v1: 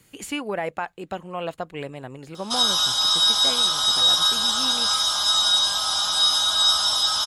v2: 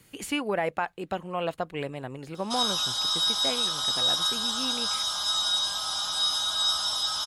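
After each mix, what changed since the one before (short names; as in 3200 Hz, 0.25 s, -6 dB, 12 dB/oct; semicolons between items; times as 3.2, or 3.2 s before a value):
speech: add bell 7100 Hz -4.5 dB 0.21 oct; background -7.0 dB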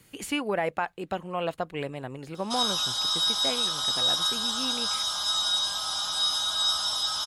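none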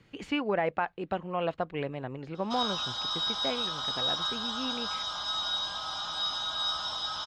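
master: add air absorption 200 m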